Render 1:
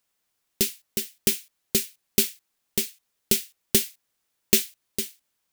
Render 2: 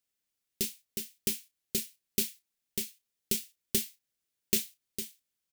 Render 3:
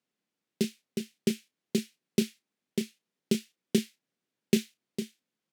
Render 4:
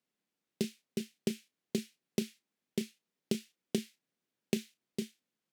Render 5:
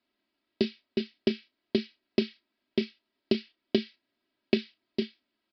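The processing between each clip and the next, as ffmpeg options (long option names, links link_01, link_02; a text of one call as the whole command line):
ffmpeg -i in.wav -filter_complex "[0:a]equalizer=frequency=980:width=0.97:gain=-8,asplit=2[link_01][link_02];[link_02]adelay=32,volume=-11dB[link_03];[link_01][link_03]amix=inputs=2:normalize=0,volume=-8.5dB" out.wav
ffmpeg -i in.wav -af "highpass=frequency=180:width=0.5412,highpass=frequency=180:width=1.3066,aemphasis=mode=reproduction:type=riaa,volume=5.5dB" out.wav
ffmpeg -i in.wav -af "acompressor=threshold=-26dB:ratio=5,volume=-2dB" out.wav
ffmpeg -i in.wav -af "aecho=1:1:3.1:0.9,aresample=11025,aresample=44100,volume=6dB" out.wav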